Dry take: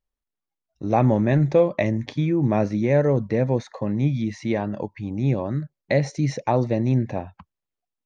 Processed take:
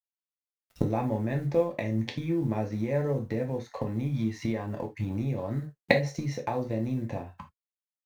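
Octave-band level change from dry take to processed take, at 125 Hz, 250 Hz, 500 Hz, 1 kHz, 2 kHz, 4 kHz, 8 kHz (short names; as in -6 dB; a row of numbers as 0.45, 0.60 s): -8.0 dB, -7.5 dB, -8.0 dB, -8.5 dB, -2.5 dB, -1.5 dB, n/a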